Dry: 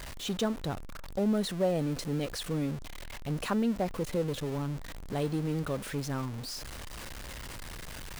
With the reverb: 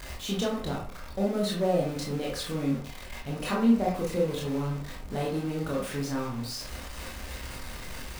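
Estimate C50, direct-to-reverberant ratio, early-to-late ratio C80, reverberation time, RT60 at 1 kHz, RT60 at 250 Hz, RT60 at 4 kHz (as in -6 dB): 3.5 dB, -4.0 dB, 10.0 dB, 0.45 s, 0.45 s, 0.45 s, 0.30 s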